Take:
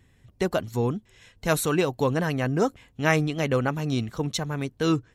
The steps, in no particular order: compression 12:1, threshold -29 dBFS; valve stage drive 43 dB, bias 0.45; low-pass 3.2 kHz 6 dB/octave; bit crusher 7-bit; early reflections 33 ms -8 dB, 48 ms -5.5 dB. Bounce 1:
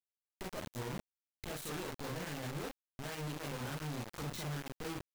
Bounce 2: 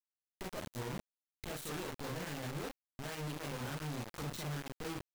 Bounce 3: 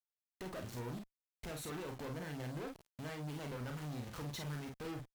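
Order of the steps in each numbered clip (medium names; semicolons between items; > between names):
low-pass > compression > valve stage > early reflections > bit crusher; compression > low-pass > valve stage > early reflections > bit crusher; low-pass > bit crusher > compression > valve stage > early reflections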